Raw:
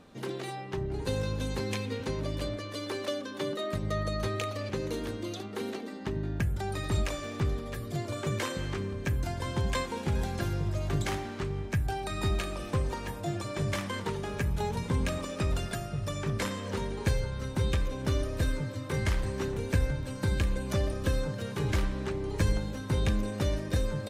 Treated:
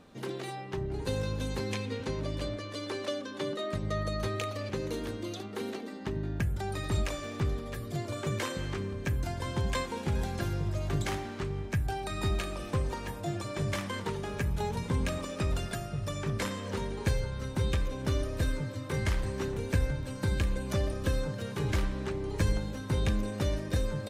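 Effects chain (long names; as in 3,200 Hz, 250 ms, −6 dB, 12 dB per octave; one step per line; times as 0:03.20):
0:01.73–0:03.96: low-pass filter 9,900 Hz 12 dB per octave
level −1 dB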